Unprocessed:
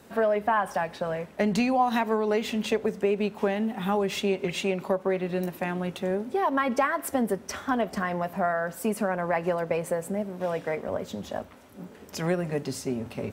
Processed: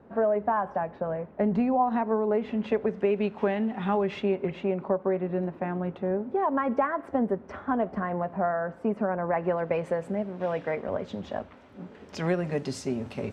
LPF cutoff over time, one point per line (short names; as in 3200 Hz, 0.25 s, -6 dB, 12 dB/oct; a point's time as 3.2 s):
2.32 s 1100 Hz
3.08 s 2700 Hz
3.93 s 2700 Hz
4.56 s 1300 Hz
9.24 s 1300 Hz
9.86 s 3300 Hz
11.82 s 3300 Hz
12.71 s 7000 Hz